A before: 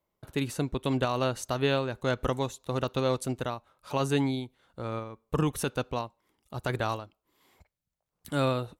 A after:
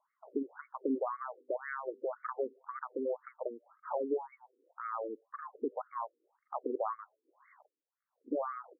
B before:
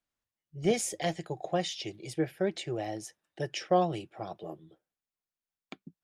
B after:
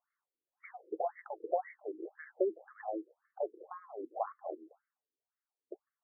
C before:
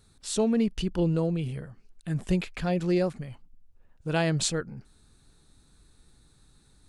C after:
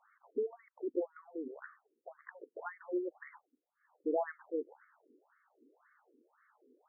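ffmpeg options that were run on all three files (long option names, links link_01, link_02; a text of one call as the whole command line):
ffmpeg -i in.wav -af "acompressor=threshold=-34dB:ratio=6,tremolo=f=1.2:d=0.35,afftfilt=real='re*between(b*sr/1024,340*pow(1600/340,0.5+0.5*sin(2*PI*1.9*pts/sr))/1.41,340*pow(1600/340,0.5+0.5*sin(2*PI*1.9*pts/sr))*1.41)':imag='im*between(b*sr/1024,340*pow(1600/340,0.5+0.5*sin(2*PI*1.9*pts/sr))/1.41,340*pow(1600/340,0.5+0.5*sin(2*PI*1.9*pts/sr))*1.41)':win_size=1024:overlap=0.75,volume=8.5dB" out.wav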